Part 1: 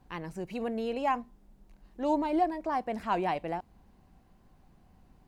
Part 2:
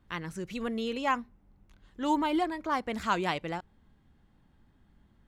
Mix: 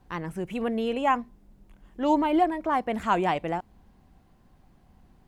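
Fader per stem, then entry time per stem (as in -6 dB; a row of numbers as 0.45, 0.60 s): +1.5, -3.0 dB; 0.00, 0.00 s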